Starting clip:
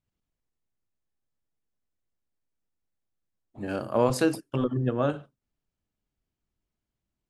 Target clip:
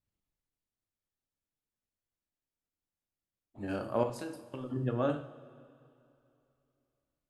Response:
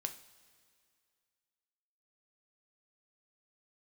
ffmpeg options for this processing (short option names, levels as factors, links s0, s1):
-filter_complex "[0:a]asettb=1/sr,asplit=3[s0][s1][s2];[s0]atrim=end=4.034[s3];[s1]atrim=start=4.03:end=4.7,asetpts=PTS-STARTPTS,afade=t=in:d=0.004:c=qsin,afade=t=out:st=0.666:d=0.004:c=qsin,acompressor=threshold=0.0224:ratio=6[s4];[s2]atrim=start=4.696[s5];[s3][s4]acrossfade=d=0.004:c1=hsin:c2=qsin[s6];[s6][s5]acrossfade=d=0.004:c1=qsin:c2=hsin[s7];[1:a]atrim=start_sample=2205,asetrate=36162,aresample=44100[s8];[s7][s8]afir=irnorm=-1:irlink=0,volume=0.562"